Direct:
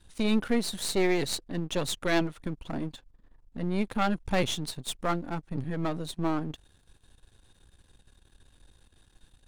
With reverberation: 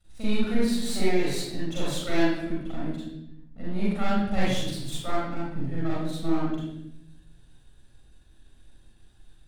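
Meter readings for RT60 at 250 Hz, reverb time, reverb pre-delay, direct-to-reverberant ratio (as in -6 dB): 1.2 s, 0.80 s, 39 ms, -8.5 dB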